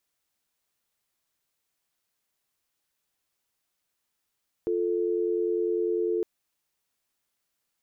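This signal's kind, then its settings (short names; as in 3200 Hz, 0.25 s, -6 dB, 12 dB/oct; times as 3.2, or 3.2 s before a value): call progress tone dial tone, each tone -26.5 dBFS 1.56 s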